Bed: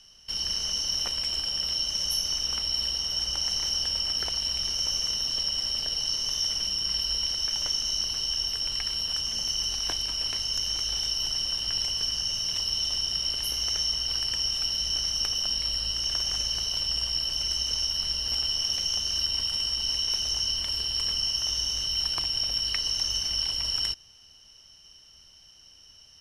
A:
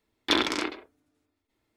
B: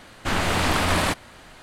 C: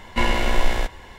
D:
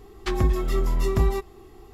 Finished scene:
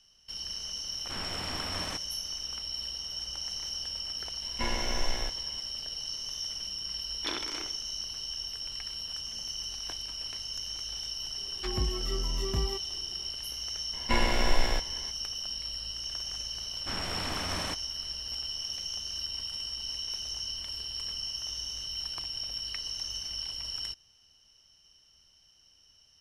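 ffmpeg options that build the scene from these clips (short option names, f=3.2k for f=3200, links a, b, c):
-filter_complex "[2:a]asplit=2[a][b];[3:a]asplit=2[c][d];[0:a]volume=-8.5dB[e];[1:a]equalizer=f=260:w=1.5:g=-4.5[f];[a]atrim=end=1.62,asetpts=PTS-STARTPTS,volume=-16.5dB,afade=t=in:d=0.004:c=hsin,afade=t=out:st=1.616:d=0.004:c=hsin,adelay=840[g];[c]atrim=end=1.18,asetpts=PTS-STARTPTS,volume=-12dB,afade=t=in:d=0.004:c=hsin,afade=t=out:st=1.176:d=0.004:c=hsin,adelay=4430[h];[f]atrim=end=1.76,asetpts=PTS-STARTPTS,volume=-11.5dB,afade=t=in:d=0.004:c=hsin,afade=t=out:st=1.756:d=0.004:c=hsin,adelay=6960[i];[4:a]atrim=end=1.93,asetpts=PTS-STARTPTS,volume=-10dB,afade=t=in:d=0.004:c=hsin,afade=t=out:st=1.926:d=0.004:c=hsin,adelay=11370[j];[d]atrim=end=1.18,asetpts=PTS-STARTPTS,volume=-6dB,afade=t=in:d=0.004:c=hsin,afade=t=out:st=1.176:d=0.004:c=hsin,adelay=13930[k];[b]atrim=end=1.62,asetpts=PTS-STARTPTS,volume=-14dB,afade=t=in:d=0.004:c=hsin,afade=t=out:st=1.616:d=0.004:c=hsin,adelay=16610[l];[e][g][h][i][j][k][l]amix=inputs=7:normalize=0"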